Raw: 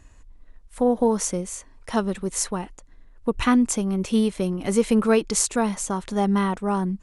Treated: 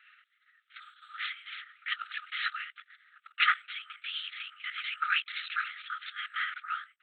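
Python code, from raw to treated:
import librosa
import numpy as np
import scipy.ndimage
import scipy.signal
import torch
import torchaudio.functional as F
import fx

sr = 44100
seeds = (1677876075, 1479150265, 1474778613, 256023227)

y = fx.lpc_vocoder(x, sr, seeds[0], excitation='whisper', order=8)
y = fx.over_compress(y, sr, threshold_db=-27.0, ratio=-0.5, at=(1.19, 3.31), fade=0.02)
y = fx.brickwall_highpass(y, sr, low_hz=1200.0)
y = y * librosa.db_to_amplitude(4.5)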